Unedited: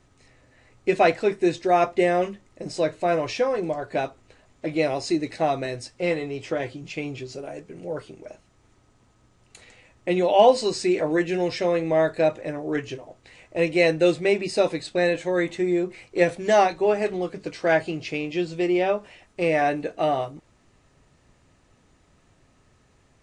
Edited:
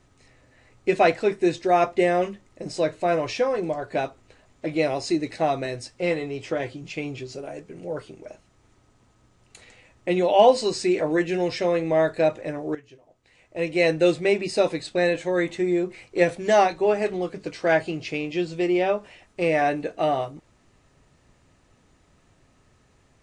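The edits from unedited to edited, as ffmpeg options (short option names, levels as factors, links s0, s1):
-filter_complex "[0:a]asplit=2[s0][s1];[s0]atrim=end=12.75,asetpts=PTS-STARTPTS,afade=t=out:st=12.746:d=0.004:c=hsin:silence=0.133352[s2];[s1]atrim=start=12.75,asetpts=PTS-STARTPTS,afade=t=in:d=1.17:c=qua:silence=0.133352[s3];[s2][s3]concat=n=2:v=0:a=1"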